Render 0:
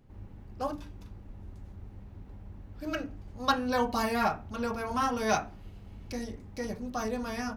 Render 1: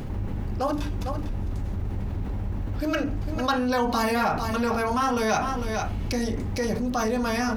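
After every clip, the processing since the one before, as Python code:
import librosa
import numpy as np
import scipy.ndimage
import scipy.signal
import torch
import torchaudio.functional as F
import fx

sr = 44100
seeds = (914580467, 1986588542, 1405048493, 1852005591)

y = x + 10.0 ** (-14.5 / 20.0) * np.pad(x, (int(452 * sr / 1000.0), 0))[:len(x)]
y = fx.env_flatten(y, sr, amount_pct=70)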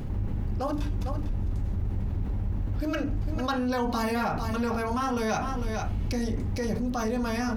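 y = fx.low_shelf(x, sr, hz=250.0, db=6.5)
y = y * 10.0 ** (-5.5 / 20.0)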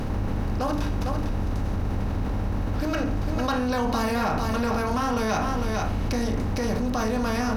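y = fx.bin_compress(x, sr, power=0.6)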